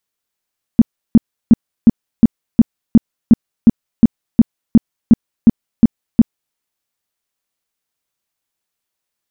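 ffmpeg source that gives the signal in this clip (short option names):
-f lavfi -i "aevalsrc='0.891*sin(2*PI*229*mod(t,0.36))*lt(mod(t,0.36),6/229)':d=5.76:s=44100"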